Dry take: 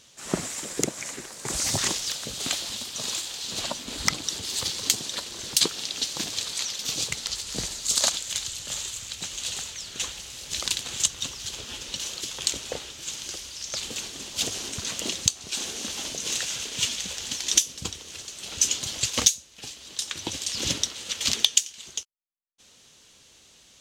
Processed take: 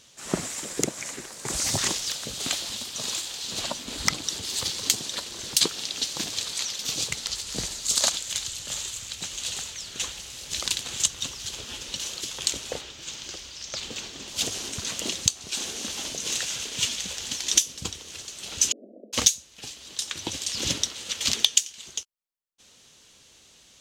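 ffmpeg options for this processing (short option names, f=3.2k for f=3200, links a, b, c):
-filter_complex "[0:a]asettb=1/sr,asplit=3[a][b][c];[a]atrim=end=12.814[d];[b]atrim=start=12.81:end=14.28,asetpts=PTS-STARTPTS,afade=t=in:d=0.004:c=qsin,afade=t=out:st=1.466:d=0.004:c=qsin,equalizer=f=11k:w=1.1:g=-13[e];[c]atrim=start=14.276[f];[d][e]acrossfade=d=0.004:c1=hsin:c2=qsin[g];[g][f]acrossfade=d=0.004:c1=qsin:c2=hsin,asettb=1/sr,asplit=3[h][i][j];[h]atrim=end=18.724[k];[i]atrim=start=18.72:end=19.13,asetpts=PTS-STARTPTS,afade=t=in:d=0.004:c=qsin,afade=t=out:st=0.406:d=0.004:c=qsin,asuperpass=centerf=370:order=20:qfactor=0.8[l];[j]atrim=start=19.126[m];[k][l]acrossfade=d=0.004:c1=hsin:c2=qsin[n];[n][m]acrossfade=d=0.004:c1=qsin:c2=hsin"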